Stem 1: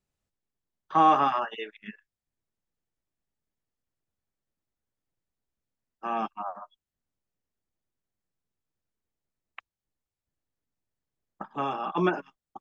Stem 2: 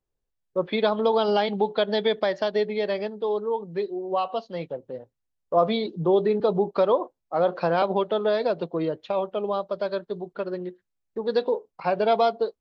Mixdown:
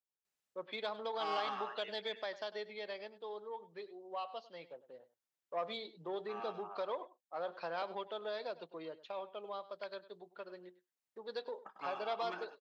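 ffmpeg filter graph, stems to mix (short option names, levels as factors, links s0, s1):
-filter_complex "[0:a]asoftclip=type=tanh:threshold=0.119,adelay=250,volume=0.891,asplit=2[s0][s1];[s1]volume=0.133[s2];[1:a]asoftclip=type=tanh:threshold=0.299,volume=0.299,asplit=3[s3][s4][s5];[s4]volume=0.141[s6];[s5]apad=whole_len=566844[s7];[s0][s7]sidechaincompress=threshold=0.00891:ratio=4:attack=16:release=931[s8];[s2][s6]amix=inputs=2:normalize=0,aecho=0:1:100:1[s9];[s8][s3][s9]amix=inputs=3:normalize=0,highpass=f=1200:p=1"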